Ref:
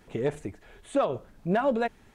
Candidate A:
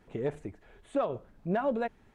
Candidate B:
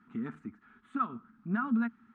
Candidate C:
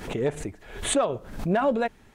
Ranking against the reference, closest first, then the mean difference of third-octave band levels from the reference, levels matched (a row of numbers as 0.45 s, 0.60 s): A, C, B; 1.5 dB, 5.0 dB, 7.5 dB